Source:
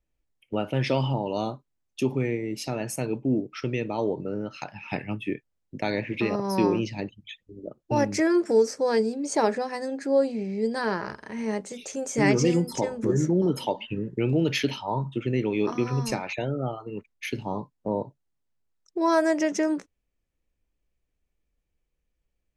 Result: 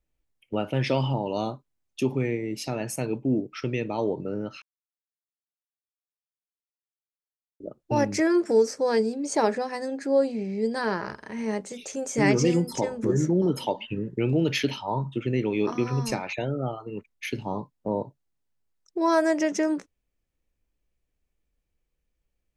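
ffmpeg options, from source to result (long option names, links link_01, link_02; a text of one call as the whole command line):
ffmpeg -i in.wav -filter_complex "[0:a]asplit=3[link_01][link_02][link_03];[link_01]atrim=end=4.62,asetpts=PTS-STARTPTS,afade=type=out:start_time=4.616:duration=0.004:curve=hsin[link_04];[link_02]atrim=start=4.62:end=7.6,asetpts=PTS-STARTPTS,volume=0[link_05];[link_03]atrim=start=7.6,asetpts=PTS-STARTPTS,afade=type=in:duration=0.004:curve=hsin[link_06];[link_04][link_05][link_06]concat=n=3:v=0:a=1" out.wav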